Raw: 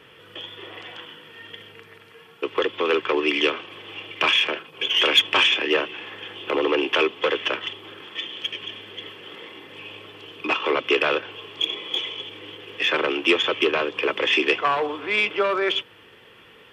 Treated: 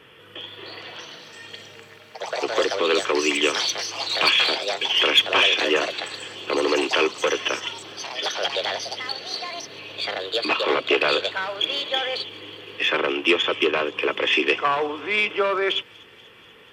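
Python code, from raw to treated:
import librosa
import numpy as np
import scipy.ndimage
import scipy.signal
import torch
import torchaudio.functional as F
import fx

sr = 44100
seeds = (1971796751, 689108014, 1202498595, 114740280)

y = fx.echo_wet_highpass(x, sr, ms=242, feedback_pct=73, hz=5200.0, wet_db=-15)
y = fx.echo_pitch(y, sr, ms=394, semitones=5, count=3, db_per_echo=-6.0)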